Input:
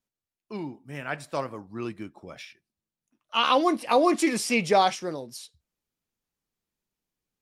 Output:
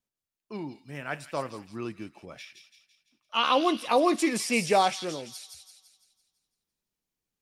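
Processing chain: feedback echo behind a high-pass 168 ms, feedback 49%, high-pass 3.4 kHz, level -4 dB; trim -2 dB

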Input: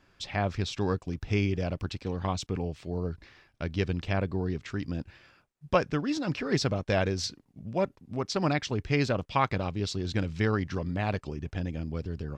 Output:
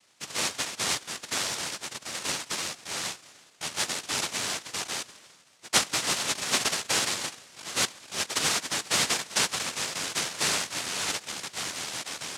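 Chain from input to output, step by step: 0.99–2.14 s: comb filter that takes the minimum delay 1 ms; Schroeder reverb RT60 3.2 s, combs from 33 ms, DRR 19.5 dB; noise-vocoded speech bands 1

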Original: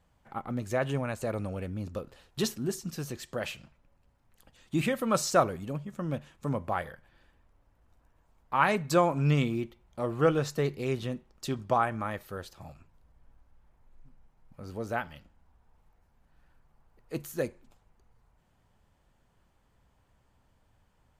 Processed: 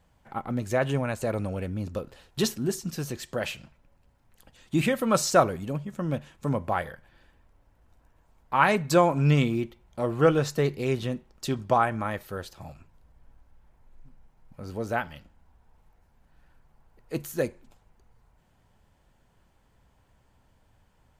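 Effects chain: band-stop 1.2 kHz, Q 18; trim +4 dB

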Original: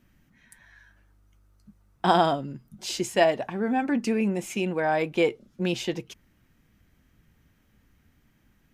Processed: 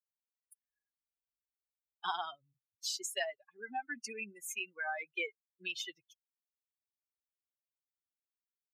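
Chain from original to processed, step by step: expander on every frequency bin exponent 3; high-pass 1.1 kHz 12 dB/octave; compression 3:1, threshold -42 dBFS, peak gain reduction 13 dB; trim +5.5 dB

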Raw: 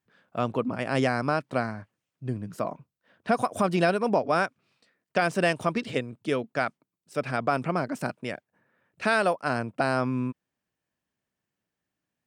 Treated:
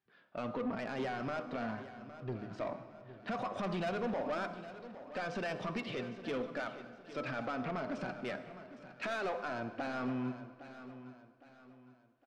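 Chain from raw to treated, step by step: low-pass 4.7 kHz 24 dB/octave; bass shelf 77 Hz -11 dB; de-hum 101.8 Hz, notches 13; peak limiter -20.5 dBFS, peak gain reduction 10 dB; flange 0.43 Hz, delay 2.4 ms, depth 3.1 ms, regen +53%; saturation -33 dBFS, distortion -11 dB; feedback delay 811 ms, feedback 38%, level -14 dB; reverberation RT60 2.0 s, pre-delay 48 ms, DRR 11.5 dB; trim +1.5 dB

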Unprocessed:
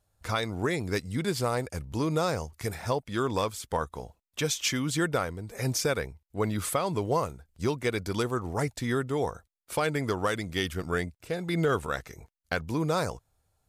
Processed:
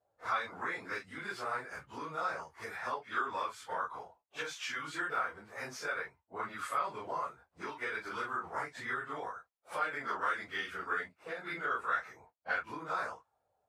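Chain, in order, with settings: phase randomisation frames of 100 ms; treble shelf 8.9 kHz +6.5 dB; compression, threshold -29 dBFS, peak gain reduction 8 dB; auto-wah 610–1400 Hz, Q 2.1, up, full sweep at -34 dBFS; trim +5.5 dB

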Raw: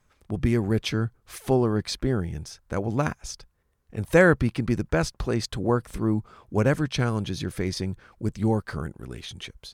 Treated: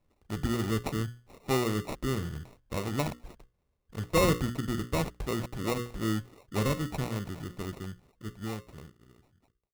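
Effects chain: fade out at the end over 3.22 s; level-controlled noise filter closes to 2 kHz, open at -19 dBFS; hum notches 60/120/180/240/300/360/420/480/540 Hz; in parallel at -7 dB: saturation -18 dBFS, distortion -11 dB; on the sum: sample-rate reducer 1.6 kHz, jitter 0%; trim -8 dB

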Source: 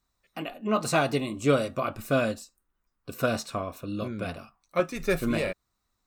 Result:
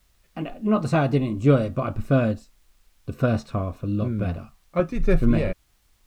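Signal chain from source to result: added noise blue -55 dBFS; RIAA curve playback

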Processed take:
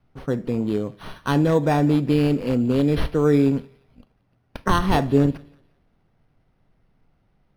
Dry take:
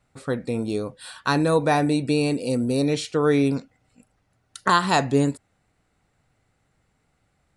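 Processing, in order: high-pass 150 Hz; treble shelf 2.5 kHz +10 dB; feedback echo behind a high-pass 177 ms, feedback 33%, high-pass 1.9 kHz, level -20 dB; reverberation RT60 0.65 s, pre-delay 3 ms, DRR 17 dB; sample-and-hold 6×; tilt EQ -4 dB/octave; trim -4 dB

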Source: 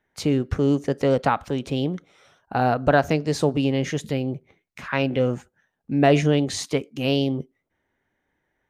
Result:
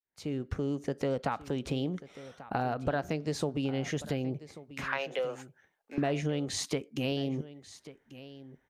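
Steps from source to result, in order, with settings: fade-in on the opening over 1.22 s; 4.89–5.98 s: high-pass 500 Hz 24 dB/octave; compression 4:1, threshold -30 dBFS, peak gain reduction 15 dB; delay 1139 ms -16.5 dB

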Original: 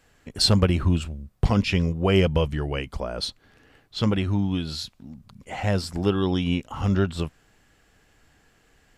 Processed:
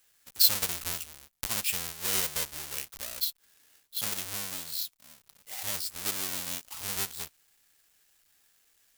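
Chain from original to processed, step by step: square wave that keeps the level; pre-emphasis filter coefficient 0.97; trim -1.5 dB

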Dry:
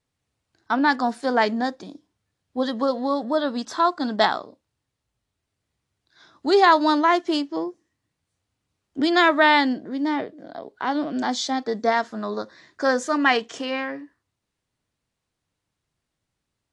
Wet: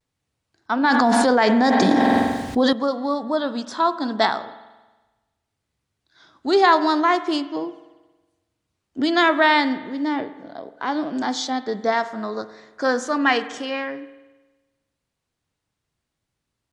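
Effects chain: vibrato 0.75 Hz 42 cents; spring tank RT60 1.2 s, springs 46 ms, chirp 55 ms, DRR 13 dB; 0.84–2.73 s: level flattener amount 100%

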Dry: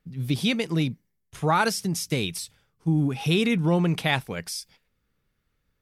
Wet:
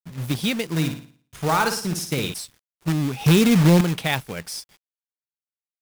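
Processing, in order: 3.21–3.81 s: bass shelf 340 Hz +10.5 dB; companded quantiser 4-bit; 0.68–2.34 s: flutter echo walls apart 9.7 m, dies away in 0.46 s

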